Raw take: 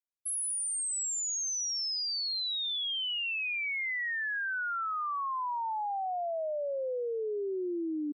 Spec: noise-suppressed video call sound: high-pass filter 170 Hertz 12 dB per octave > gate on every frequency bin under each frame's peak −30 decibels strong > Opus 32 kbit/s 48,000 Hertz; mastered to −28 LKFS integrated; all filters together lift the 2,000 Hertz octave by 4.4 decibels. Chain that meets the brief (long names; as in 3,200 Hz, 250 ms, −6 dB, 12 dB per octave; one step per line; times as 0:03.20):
high-pass filter 170 Hz 12 dB per octave
parametric band 2,000 Hz +5.5 dB
gate on every frequency bin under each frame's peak −30 dB strong
level +2 dB
Opus 32 kbit/s 48,000 Hz